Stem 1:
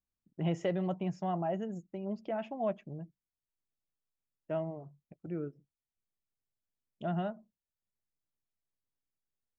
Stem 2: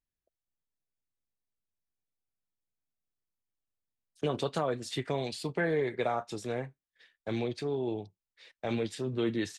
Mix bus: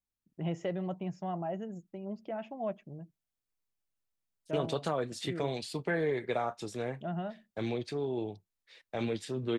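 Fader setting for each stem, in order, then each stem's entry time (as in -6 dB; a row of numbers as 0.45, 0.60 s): -2.5, -1.5 dB; 0.00, 0.30 s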